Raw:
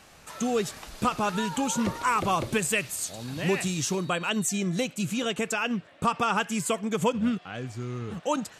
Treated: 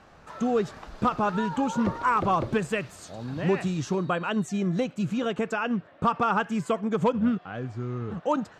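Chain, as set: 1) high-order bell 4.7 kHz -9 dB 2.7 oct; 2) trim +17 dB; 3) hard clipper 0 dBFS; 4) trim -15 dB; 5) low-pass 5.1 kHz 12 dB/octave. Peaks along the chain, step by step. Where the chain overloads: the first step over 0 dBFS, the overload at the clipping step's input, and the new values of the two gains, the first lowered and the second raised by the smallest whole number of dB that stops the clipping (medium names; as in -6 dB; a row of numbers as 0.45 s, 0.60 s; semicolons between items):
-13.0 dBFS, +4.0 dBFS, 0.0 dBFS, -15.0 dBFS, -14.5 dBFS; step 2, 4.0 dB; step 2 +13 dB, step 4 -11 dB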